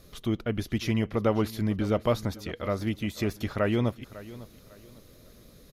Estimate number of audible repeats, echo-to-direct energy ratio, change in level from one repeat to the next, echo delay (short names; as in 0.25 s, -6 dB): 2, -17.0 dB, -10.0 dB, 0.551 s